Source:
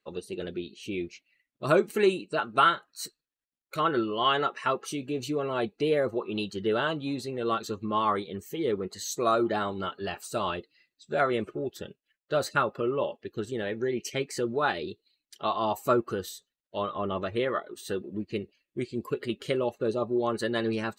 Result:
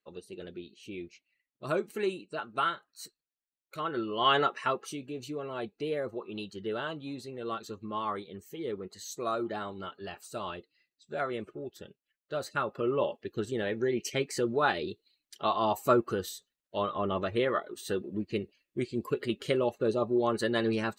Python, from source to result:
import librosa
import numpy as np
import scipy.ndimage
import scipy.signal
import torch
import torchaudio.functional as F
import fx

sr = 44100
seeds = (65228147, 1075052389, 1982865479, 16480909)

y = fx.gain(x, sr, db=fx.line((3.89, -8.0), (4.36, 1.5), (5.13, -7.5), (12.49, -7.5), (12.94, 0.0)))